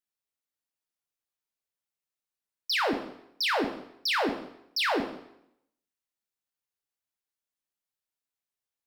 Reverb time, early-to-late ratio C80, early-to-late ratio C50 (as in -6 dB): 0.75 s, 10.5 dB, 8.0 dB